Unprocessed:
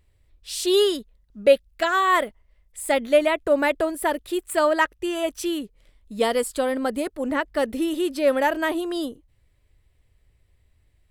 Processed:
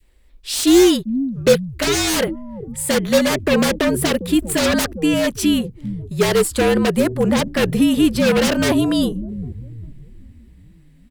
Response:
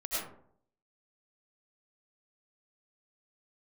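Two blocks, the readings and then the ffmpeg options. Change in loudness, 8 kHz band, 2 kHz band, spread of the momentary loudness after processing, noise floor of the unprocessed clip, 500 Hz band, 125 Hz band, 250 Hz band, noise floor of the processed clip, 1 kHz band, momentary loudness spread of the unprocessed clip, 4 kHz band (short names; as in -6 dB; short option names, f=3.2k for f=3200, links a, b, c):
+5.5 dB, +11.5 dB, +3.0 dB, 13 LU, -64 dBFS, +3.5 dB, n/a, +11.0 dB, -49 dBFS, -2.0 dB, 10 LU, +8.0 dB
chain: -filter_complex "[0:a]adynamicequalizer=threshold=0.0355:dfrequency=1000:dqfactor=0.78:tfrequency=1000:tqfactor=0.78:attack=5:release=100:ratio=0.375:range=2:mode=boostabove:tftype=bell,afreqshift=-50,acrossover=split=430[a][b];[a]asplit=7[c][d][e][f][g][h][i];[d]adelay=400,afreqshift=-90,volume=-9dB[j];[e]adelay=800,afreqshift=-180,volume=-15dB[k];[f]adelay=1200,afreqshift=-270,volume=-21dB[l];[g]adelay=1600,afreqshift=-360,volume=-27.1dB[m];[h]adelay=2000,afreqshift=-450,volume=-33.1dB[n];[i]adelay=2400,afreqshift=-540,volume=-39.1dB[o];[c][j][k][l][m][n][o]amix=inputs=7:normalize=0[p];[b]aeval=exprs='0.0562*(abs(mod(val(0)/0.0562+3,4)-2)-1)':c=same[q];[p][q]amix=inputs=2:normalize=0,volume=9dB"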